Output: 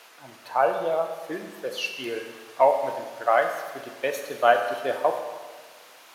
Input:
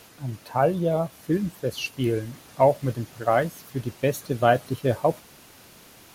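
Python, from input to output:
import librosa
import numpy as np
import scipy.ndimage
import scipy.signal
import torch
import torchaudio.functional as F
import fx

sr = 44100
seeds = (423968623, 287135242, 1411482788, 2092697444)

y = scipy.signal.sosfilt(scipy.signal.butter(2, 720.0, 'highpass', fs=sr, output='sos'), x)
y = fx.high_shelf(y, sr, hz=4600.0, db=-10.0)
y = fx.rev_schroeder(y, sr, rt60_s=1.5, comb_ms=30, drr_db=5.5)
y = y * 10.0 ** (4.0 / 20.0)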